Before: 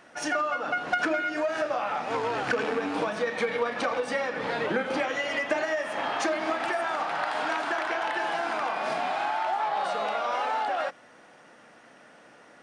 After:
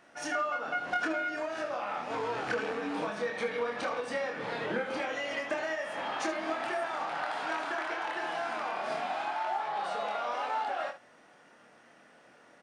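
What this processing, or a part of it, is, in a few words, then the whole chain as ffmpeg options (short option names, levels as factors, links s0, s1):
slapback doubling: -filter_complex "[0:a]asplit=3[s0][s1][s2];[s1]adelay=25,volume=0.631[s3];[s2]adelay=74,volume=0.282[s4];[s0][s3][s4]amix=inputs=3:normalize=0,volume=0.447"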